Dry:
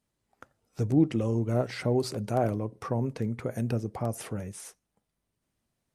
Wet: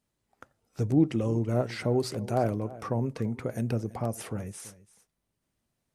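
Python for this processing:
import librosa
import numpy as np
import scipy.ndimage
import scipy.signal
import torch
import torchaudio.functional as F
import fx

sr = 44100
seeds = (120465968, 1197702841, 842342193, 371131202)

y = x + 10.0 ** (-18.5 / 20.0) * np.pad(x, (int(334 * sr / 1000.0), 0))[:len(x)]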